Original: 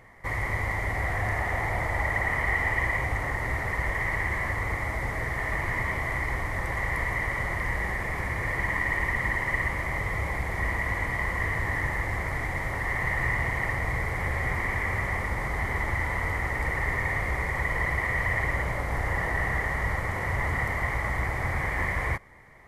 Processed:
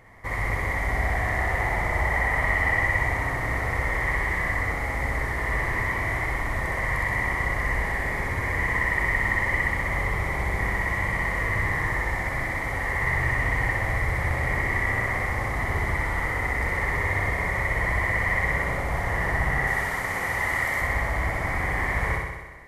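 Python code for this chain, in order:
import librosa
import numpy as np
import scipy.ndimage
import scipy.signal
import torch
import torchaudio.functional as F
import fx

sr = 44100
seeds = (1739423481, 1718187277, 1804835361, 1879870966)

p1 = fx.tilt_eq(x, sr, slope=2.0, at=(19.67, 20.81))
y = p1 + fx.room_flutter(p1, sr, wall_m=10.8, rt60_s=1.2, dry=0)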